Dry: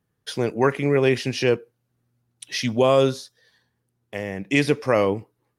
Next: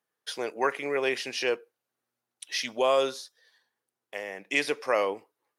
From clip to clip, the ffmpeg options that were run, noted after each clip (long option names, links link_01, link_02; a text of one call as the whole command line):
ffmpeg -i in.wav -af "highpass=550,volume=-3dB" out.wav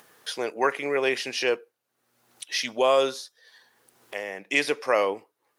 ffmpeg -i in.wav -af "acompressor=mode=upward:threshold=-40dB:ratio=2.5,volume=3dB" out.wav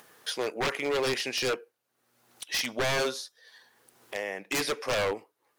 ffmpeg -i in.wav -af "aeval=exprs='0.0794*(abs(mod(val(0)/0.0794+3,4)-2)-1)':channel_layout=same" out.wav